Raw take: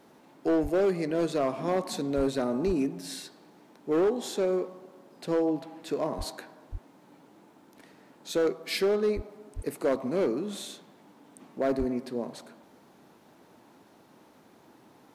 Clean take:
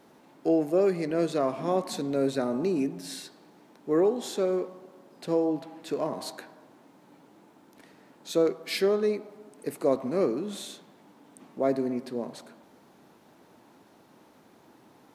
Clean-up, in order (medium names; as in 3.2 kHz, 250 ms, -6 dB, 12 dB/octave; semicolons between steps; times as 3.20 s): clip repair -20 dBFS; de-plosive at 0.62/2.16/2.66/6.17/6.71/9.15/9.55/11.78 s